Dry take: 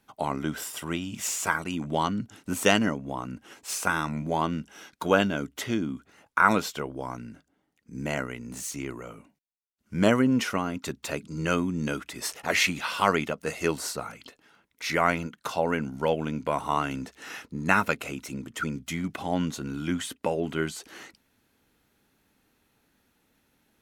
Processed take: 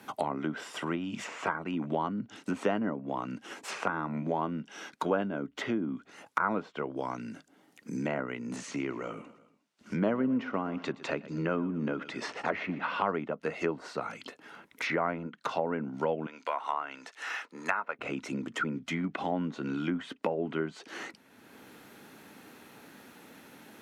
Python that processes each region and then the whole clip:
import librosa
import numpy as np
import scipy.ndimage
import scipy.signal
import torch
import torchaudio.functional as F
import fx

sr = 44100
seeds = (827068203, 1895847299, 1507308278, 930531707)

y = fx.chain(x, sr, fx.lowpass(hz=6100.0, slope=12),
    fx.echo_feedback(ms=119, feedback_pct=42, wet_db=-19.0), at=(8.56, 13.1))
y = fx.chain(y, sr, fx.highpass(hz=820.0, slope=12),
    fx.high_shelf(hz=10000.0, db=-7.0), at=(16.26, 17.99))
y = fx.env_lowpass_down(y, sr, base_hz=1200.0, full_db=-24.5)
y = scipy.signal.sosfilt(scipy.signal.butter(2, 180.0, 'highpass', fs=sr, output='sos'), y)
y = fx.band_squash(y, sr, depth_pct=70)
y = y * 10.0 ** (-2.5 / 20.0)